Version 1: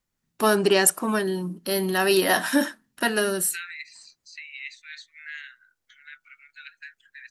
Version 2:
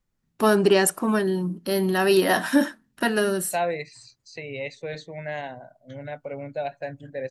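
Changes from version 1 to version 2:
first voice: add tilt -1.5 dB/oct; second voice: remove steep high-pass 1300 Hz 96 dB/oct

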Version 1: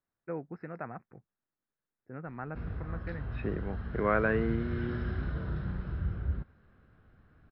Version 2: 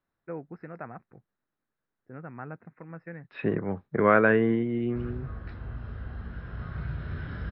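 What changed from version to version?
second voice +7.5 dB; background: entry +2.40 s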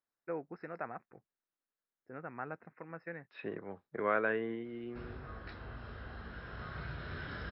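second voice -10.5 dB; master: add tone controls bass -11 dB, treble +11 dB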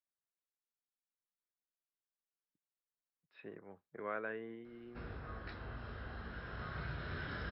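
first voice: muted; second voice -9.5 dB

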